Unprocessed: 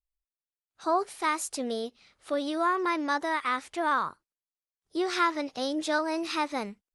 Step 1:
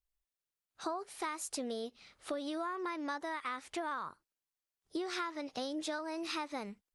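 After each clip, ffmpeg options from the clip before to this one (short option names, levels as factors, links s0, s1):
-af "acompressor=threshold=0.0158:ratio=10,volume=1.12"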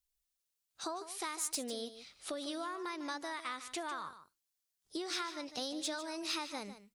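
-filter_complex "[0:a]acrossover=split=3300[s0][s1];[s1]aeval=exprs='0.0447*sin(PI/2*2*val(0)/0.0447)':c=same[s2];[s0][s2]amix=inputs=2:normalize=0,aecho=1:1:150:0.237,volume=0.708"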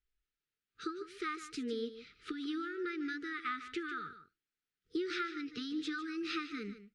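-af "lowpass=2300,afftfilt=real='re*(1-between(b*sr/4096,480,1200))':imag='im*(1-between(b*sr/4096,480,1200))':win_size=4096:overlap=0.75,volume=1.78"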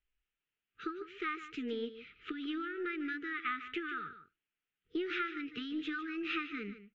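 -af "aeval=exprs='0.0531*(cos(1*acos(clip(val(0)/0.0531,-1,1)))-cos(1*PI/2))+0.000668*(cos(3*acos(clip(val(0)/0.0531,-1,1)))-cos(3*PI/2))+0.000668*(cos(4*acos(clip(val(0)/0.0531,-1,1)))-cos(4*PI/2))':c=same,highshelf=f=3700:t=q:w=3:g=-9,aresample=16000,aresample=44100"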